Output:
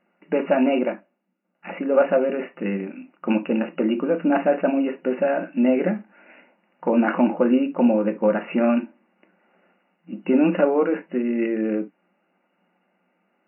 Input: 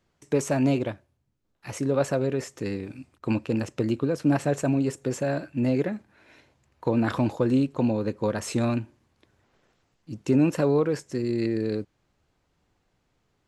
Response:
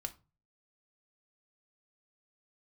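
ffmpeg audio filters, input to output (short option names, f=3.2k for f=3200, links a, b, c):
-filter_complex "[1:a]atrim=start_sample=2205,atrim=end_sample=3528[a];[0:a][a]afir=irnorm=-1:irlink=0,afftfilt=real='re*between(b*sr/4096,170,2900)':imag='im*between(b*sr/4096,170,2900)':win_size=4096:overlap=0.75,acontrast=32,volume=3dB"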